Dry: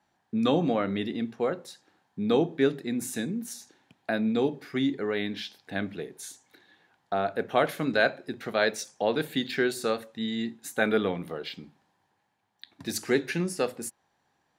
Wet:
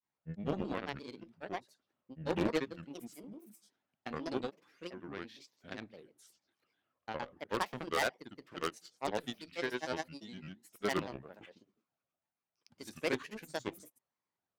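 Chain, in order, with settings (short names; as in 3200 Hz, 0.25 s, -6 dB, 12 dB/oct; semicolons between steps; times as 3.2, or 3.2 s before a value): added harmonics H 7 -19 dB, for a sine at -8 dBFS; grains 0.114 s, grains 20/s, pitch spread up and down by 7 st; wavefolder -16 dBFS; gain -5 dB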